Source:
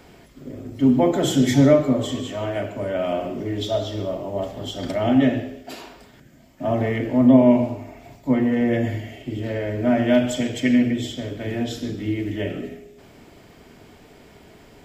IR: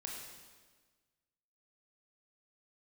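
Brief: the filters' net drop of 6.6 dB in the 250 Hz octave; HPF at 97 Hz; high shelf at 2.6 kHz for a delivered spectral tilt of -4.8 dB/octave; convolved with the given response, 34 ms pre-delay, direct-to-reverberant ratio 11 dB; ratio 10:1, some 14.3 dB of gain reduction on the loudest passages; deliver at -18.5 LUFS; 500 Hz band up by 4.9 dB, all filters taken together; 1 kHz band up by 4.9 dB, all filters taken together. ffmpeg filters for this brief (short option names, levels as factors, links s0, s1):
-filter_complex "[0:a]highpass=97,equalizer=f=250:t=o:g=-9,equalizer=f=500:t=o:g=6.5,equalizer=f=1000:t=o:g=4,highshelf=f=2600:g=4.5,acompressor=threshold=0.1:ratio=10,asplit=2[s0][s1];[1:a]atrim=start_sample=2205,adelay=34[s2];[s1][s2]afir=irnorm=-1:irlink=0,volume=0.335[s3];[s0][s3]amix=inputs=2:normalize=0,volume=2.37"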